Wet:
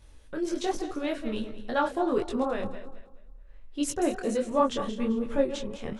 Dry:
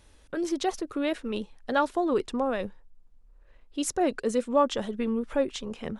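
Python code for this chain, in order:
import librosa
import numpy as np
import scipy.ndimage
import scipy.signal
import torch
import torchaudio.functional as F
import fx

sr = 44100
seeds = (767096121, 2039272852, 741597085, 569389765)

y = fx.reverse_delay_fb(x, sr, ms=107, feedback_pct=55, wet_db=-10.5)
y = fx.low_shelf(y, sr, hz=110.0, db=9.0)
y = fx.detune_double(y, sr, cents=46)
y = y * 10.0 ** (1.5 / 20.0)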